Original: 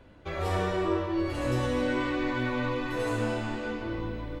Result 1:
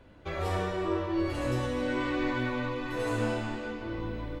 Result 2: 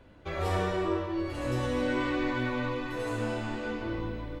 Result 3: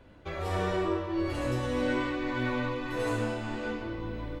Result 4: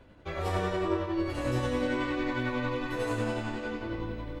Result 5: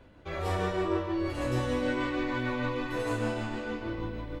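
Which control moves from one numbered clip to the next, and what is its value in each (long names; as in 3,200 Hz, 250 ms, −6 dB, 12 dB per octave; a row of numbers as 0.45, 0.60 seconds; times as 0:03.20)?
shaped tremolo, speed: 1, 0.58, 1.7, 11, 6.5 Hertz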